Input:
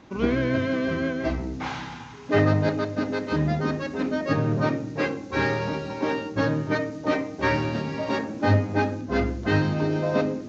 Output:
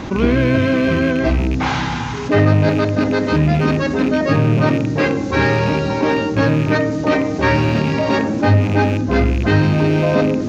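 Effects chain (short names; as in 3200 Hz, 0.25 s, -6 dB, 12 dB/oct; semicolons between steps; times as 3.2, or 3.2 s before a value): rattling part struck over -30 dBFS, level -28 dBFS; low shelf 110 Hz +7.5 dB; fast leveller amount 50%; gain +3 dB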